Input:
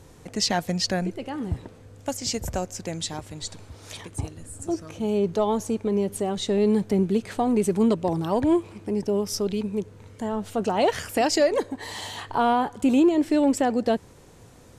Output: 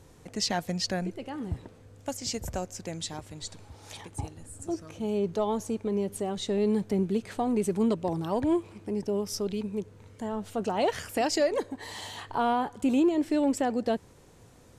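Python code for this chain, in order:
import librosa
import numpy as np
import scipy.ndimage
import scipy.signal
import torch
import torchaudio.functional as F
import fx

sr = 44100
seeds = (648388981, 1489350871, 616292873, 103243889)

y = fx.peak_eq(x, sr, hz=830.0, db=10.5, octaves=0.2, at=(3.64, 4.47))
y = y * 10.0 ** (-5.0 / 20.0)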